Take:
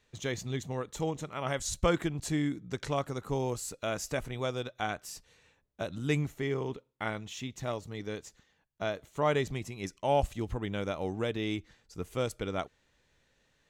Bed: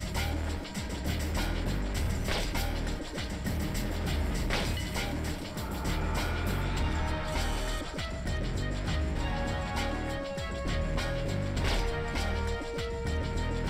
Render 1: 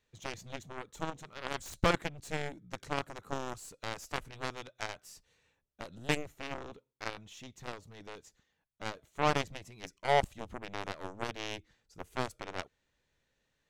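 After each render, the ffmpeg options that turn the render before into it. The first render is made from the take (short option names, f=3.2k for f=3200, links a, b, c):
-af "aeval=exprs='0.237*(cos(1*acos(clip(val(0)/0.237,-1,1)))-cos(1*PI/2))+0.0473*(cos(7*acos(clip(val(0)/0.237,-1,1)))-cos(7*PI/2))+0.0075*(cos(8*acos(clip(val(0)/0.237,-1,1)))-cos(8*PI/2))':c=same"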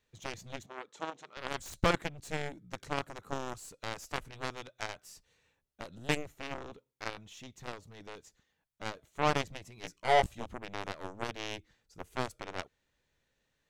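-filter_complex "[0:a]asettb=1/sr,asplit=3[a][b][c];[a]atrim=end=0.664[d];[b]atrim=start=0.66:end=1.37,asetpts=PTS-STARTPTS,afade=t=in:d=0.004:c=qsin,afade=t=out:st=0.706:d=0.004:c=qsin,highpass=330,lowpass=6.1k[e];[c]atrim=start=1.366[f];[d][e]acrossfade=d=0.004:c1=hsin:c2=qsin[g];[g][f]acrossfade=d=0.004:c1=qsin:c2=hsin,asettb=1/sr,asplit=3[h][i][j];[h]atrim=end=9.764[k];[i]atrim=start=9.76:end=10.46,asetpts=PTS-STARTPTS,afade=t=in:d=0.004:c=qsin,afade=t=out:st=0.696:d=0.004:c=qsin,asplit=2[l][m];[m]adelay=17,volume=-3dB[n];[l][n]amix=inputs=2:normalize=0,atrim=end_sample=30870[o];[j]atrim=start=10.456[p];[k][o]acrossfade=d=0.004:c1=hsin:c2=qsin[q];[q][p]acrossfade=d=0.004:c1=qsin:c2=hsin"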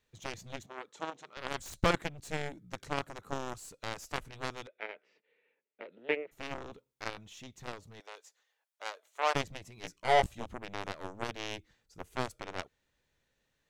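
-filter_complex "[0:a]asplit=3[a][b][c];[a]afade=t=out:st=4.66:d=0.02[d];[b]highpass=f=270:w=0.5412,highpass=f=270:w=1.3066,equalizer=f=280:t=q:w=4:g=-5,equalizer=f=450:t=q:w=4:g=6,equalizer=f=760:t=q:w=4:g=-7,equalizer=f=1.1k:t=q:w=4:g=-9,equalizer=f=1.5k:t=q:w=4:g=-4,equalizer=f=2.2k:t=q:w=4:g=4,lowpass=f=2.6k:w=0.5412,lowpass=f=2.6k:w=1.3066,afade=t=in:st=4.66:d=0.02,afade=t=out:st=6.31:d=0.02[e];[c]afade=t=in:st=6.31:d=0.02[f];[d][e][f]amix=inputs=3:normalize=0,asettb=1/sr,asplit=3[g][h][i];[g]atrim=end=8.004[j];[h]atrim=start=8:end=9.35,asetpts=PTS-STARTPTS,afade=t=in:d=0.004:c=qsin,afade=t=out:st=1.346:d=0.004:c=qsin,highpass=f=500:w=0.5412,highpass=f=500:w=1.3066[k];[i]atrim=start=9.346[l];[j][k]acrossfade=d=0.004:c1=hsin:c2=qsin[m];[m][l]acrossfade=d=0.004:c1=qsin:c2=hsin"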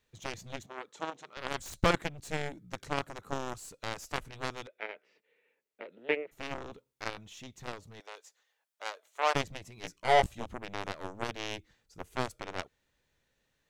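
-af "volume=1.5dB"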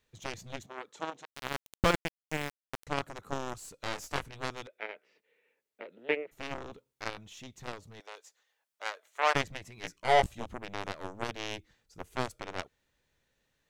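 -filter_complex "[0:a]asettb=1/sr,asplit=3[a][b][c];[a]atrim=end=1.254[d];[b]atrim=start=1.25:end=2.87,asetpts=PTS-STARTPTS,afade=t=in:d=0.004:c=qsin,afade=t=out:st=1.616:d=0.004:c=qsin,aeval=exprs='val(0)*gte(abs(val(0)),0.0299)':c=same[e];[c]atrim=start=2.866[f];[d][e]acrossfade=d=0.004:c1=hsin:c2=qsin[g];[g][f]acrossfade=d=0.004:c1=qsin:c2=hsin,asettb=1/sr,asplit=3[h][i][j];[h]atrim=end=3.784[k];[i]atrim=start=3.78:end=4.26,asetpts=PTS-STARTPTS,afade=t=in:d=0.004:c=qsin,afade=t=out:st=0.476:d=0.004:c=qsin,asplit=2[l][m];[m]adelay=21,volume=-4dB[n];[l][n]amix=inputs=2:normalize=0,atrim=end_sample=21168[o];[j]atrim=start=4.256[p];[k][o]acrossfade=d=0.004:c1=hsin:c2=qsin[q];[q][p]acrossfade=d=0.004:c1=qsin:c2=hsin,asettb=1/sr,asplit=3[r][s][t];[r]atrim=end=8.834[u];[s]atrim=start=8.83:end=9.98,asetpts=PTS-STARTPTS,afade=t=in:d=0.004:c=qsin,afade=t=out:st=1.146:d=0.004:c=qsin,equalizer=f=1.8k:w=1.5:g=5[v];[t]atrim=start=9.976[w];[u][v]acrossfade=d=0.004:c1=hsin:c2=qsin[x];[x][w]acrossfade=d=0.004:c1=qsin:c2=hsin"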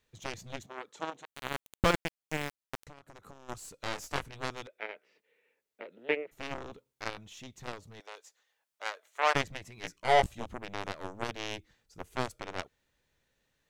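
-filter_complex "[0:a]asettb=1/sr,asplit=3[a][b][c];[a]atrim=end=1.164[d];[b]atrim=start=1.16:end=1.85,asetpts=PTS-STARTPTS,afade=t=in:d=0.004:c=qsin,afade=t=out:st=0.686:d=0.004:c=qsin,equalizer=f=5.2k:t=o:w=0.25:g=-10.5[e];[c]atrim=start=1.846[f];[d][e]acrossfade=d=0.004:c1=hsin:c2=qsin[g];[g][f]acrossfade=d=0.004:c1=qsin:c2=hsin,asplit=3[h][i][j];[h]afade=t=out:st=2.82:d=0.02[k];[i]acompressor=threshold=-46dB:ratio=16:attack=3.2:release=140:knee=1:detection=peak,afade=t=in:st=2.82:d=0.02,afade=t=out:st=3.48:d=0.02[l];[j]afade=t=in:st=3.48:d=0.02[m];[k][l][m]amix=inputs=3:normalize=0"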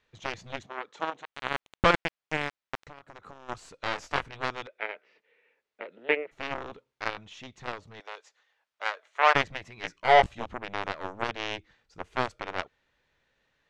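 -af "lowpass=5.2k,equalizer=f=1.4k:w=0.37:g=7"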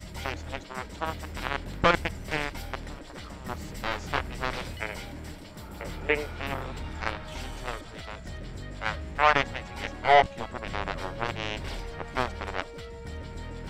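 -filter_complex "[1:a]volume=-7dB[a];[0:a][a]amix=inputs=2:normalize=0"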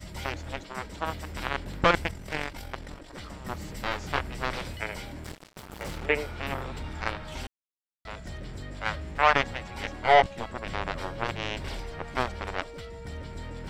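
-filter_complex "[0:a]asettb=1/sr,asplit=3[a][b][c];[a]atrim=end=2.114[d];[b]atrim=start=2.11:end=3.14,asetpts=PTS-STARTPTS,afade=t=in:d=0.004:c=qsin,afade=t=out:st=1.026:d=0.004:c=qsin,tremolo=f=46:d=0.571[e];[c]atrim=start=3.136[f];[d][e]acrossfade=d=0.004:c1=hsin:c2=qsin[g];[g][f]acrossfade=d=0.004:c1=qsin:c2=hsin,asettb=1/sr,asplit=3[h][i][j];[h]atrim=end=5.244[k];[i]atrim=start=5.24:end=6.06,asetpts=PTS-STARTPTS,afade=t=in:d=0.004:c=qsin,afade=t=out:st=0.816:d=0.004:c=qsin,acrusher=bits=5:mix=0:aa=0.5[l];[j]atrim=start=6.056[m];[k][l]acrossfade=d=0.004:c1=hsin:c2=qsin[n];[n][m]acrossfade=d=0.004:c1=qsin:c2=hsin,asplit=3[o][p][q];[o]atrim=end=7.47,asetpts=PTS-STARTPTS,afade=t=out:st=7.466:d=0.004:c=hsin[r];[p]atrim=start=7.47:end=8.05,asetpts=PTS-STARTPTS,volume=0[s];[q]atrim=start=8.05,asetpts=PTS-STARTPTS,afade=t=in:d=0.004:c=hsin[t];[r][s][t]concat=n=3:v=0:a=1"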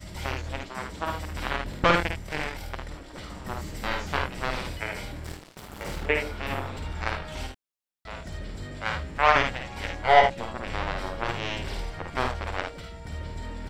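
-af "aecho=1:1:53|76:0.596|0.355"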